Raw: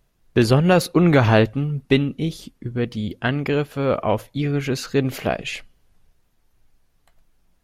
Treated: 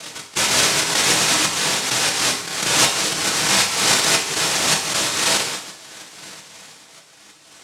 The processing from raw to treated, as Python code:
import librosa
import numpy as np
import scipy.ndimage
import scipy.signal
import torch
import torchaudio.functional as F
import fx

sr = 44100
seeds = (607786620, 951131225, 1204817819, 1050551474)

y = fx.spec_expand(x, sr, power=2.0)
y = 10.0 ** (-19.5 / 20.0) * (np.abs((y / 10.0 ** (-19.5 / 20.0) + 3.0) % 4.0 - 2.0) - 1.0)
y = fx.lowpass(y, sr, hz=1200.0, slope=6)
y = y + 0.54 * np.pad(y, (int(6.3 * sr / 1000.0), 0))[:len(y)]
y = 10.0 ** (-22.0 / 20.0) * np.tanh(y / 10.0 ** (-22.0 / 20.0))
y = scipy.signal.sosfilt(scipy.signal.butter(2, 170.0, 'highpass', fs=sr, output='sos'), y)
y = fx.peak_eq(y, sr, hz=490.0, db=8.0, octaves=0.31)
y = fx.echo_swing(y, sr, ms=1286, ratio=3, feedback_pct=38, wet_db=-20)
y = fx.noise_vocoder(y, sr, seeds[0], bands=1)
y = fx.rev_gated(y, sr, seeds[1], gate_ms=200, shape='falling', drr_db=1.5)
y = fx.pre_swell(y, sr, db_per_s=45.0)
y = y * 10.0 ** (6.5 / 20.0)